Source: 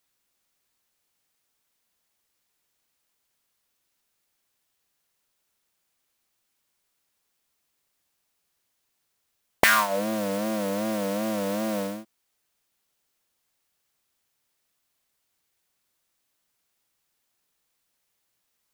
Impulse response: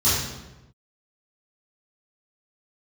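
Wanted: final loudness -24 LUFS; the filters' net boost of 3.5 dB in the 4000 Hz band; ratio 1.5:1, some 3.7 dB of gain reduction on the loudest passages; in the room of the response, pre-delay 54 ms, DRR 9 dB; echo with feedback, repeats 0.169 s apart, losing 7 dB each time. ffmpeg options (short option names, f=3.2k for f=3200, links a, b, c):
-filter_complex "[0:a]equalizer=f=4k:t=o:g=4.5,acompressor=threshold=-26dB:ratio=1.5,aecho=1:1:169|338|507|676|845:0.447|0.201|0.0905|0.0407|0.0183,asplit=2[a][b];[1:a]atrim=start_sample=2205,adelay=54[c];[b][c]afir=irnorm=-1:irlink=0,volume=-25dB[d];[a][d]amix=inputs=2:normalize=0,volume=2.5dB"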